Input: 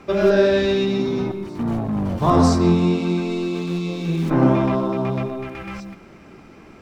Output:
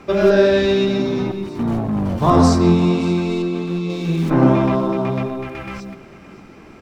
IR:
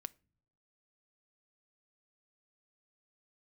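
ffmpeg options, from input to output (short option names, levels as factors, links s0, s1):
-filter_complex "[0:a]asettb=1/sr,asplit=3[s0][s1][s2];[s0]atrim=end=3.424[s3];[s1]atrim=start=3.42:end=3.9,asetpts=PTS-STARTPTS,afade=t=in:d=0.004:c=qsin,afade=t=out:st=0.476:d=0.004:c=qsin,highshelf=f=3400:g=-9[s4];[s2]atrim=start=3.896[s5];[s3][s4]acrossfade=d=0.004:c1=hsin:c2=qsin[s6];[s6][s5]acrossfade=d=0.004:c1=qsin:c2=hsin,asplit=2[s7][s8];[s8]aecho=0:1:568:0.126[s9];[s7][s9]amix=inputs=2:normalize=0,volume=1.33"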